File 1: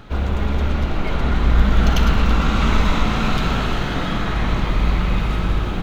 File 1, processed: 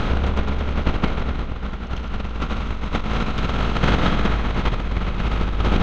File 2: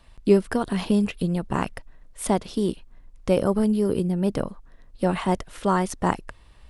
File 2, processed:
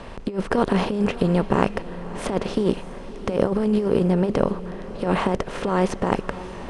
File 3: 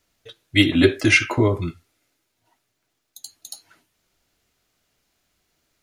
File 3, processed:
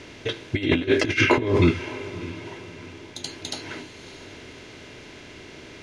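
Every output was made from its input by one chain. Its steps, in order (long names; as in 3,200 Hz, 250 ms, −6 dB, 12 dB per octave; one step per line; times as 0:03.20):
compressor on every frequency bin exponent 0.6
parametric band 470 Hz +3.5 dB 0.41 octaves
compressor whose output falls as the input rises −19 dBFS, ratio −0.5
high-frequency loss of the air 92 metres
feedback delay with all-pass diffusion 611 ms, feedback 43%, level −15 dB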